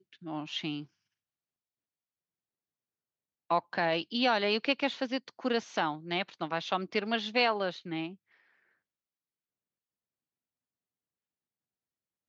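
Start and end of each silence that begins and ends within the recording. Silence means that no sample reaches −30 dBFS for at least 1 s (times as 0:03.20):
0:00.77–0:03.51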